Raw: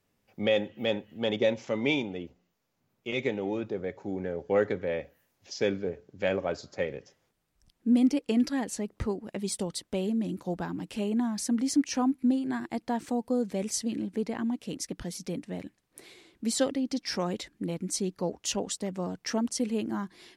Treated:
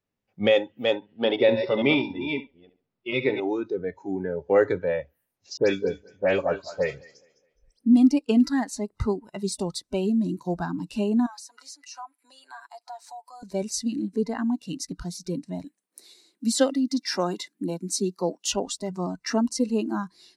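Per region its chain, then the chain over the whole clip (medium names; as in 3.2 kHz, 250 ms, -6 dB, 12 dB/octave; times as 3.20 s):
0.95–3.40 s: chunks repeated in reverse 291 ms, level -7 dB + brick-wall FIR low-pass 5.6 kHz + flutter echo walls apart 11.8 m, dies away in 0.36 s
5.57–7.94 s: phase dispersion highs, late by 115 ms, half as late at 2.9 kHz + thinning echo 208 ms, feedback 39%, high-pass 160 Hz, level -11.5 dB
11.26–13.43 s: high-pass 660 Hz 24 dB/octave + comb 7 ms, depth 56% + compression 2.5:1, threshold -46 dBFS
15.64–18.51 s: steep high-pass 180 Hz + treble shelf 9.4 kHz +8 dB
whole clip: spectral noise reduction 16 dB; treble shelf 7.8 kHz -11 dB; trim +6 dB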